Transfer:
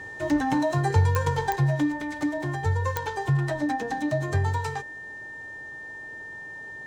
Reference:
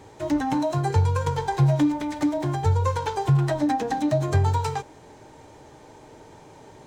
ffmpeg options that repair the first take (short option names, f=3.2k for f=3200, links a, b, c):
-af "adeclick=t=4,bandreject=f=1.8k:w=30,asetnsamples=n=441:p=0,asendcmd='1.56 volume volume 4dB',volume=0dB"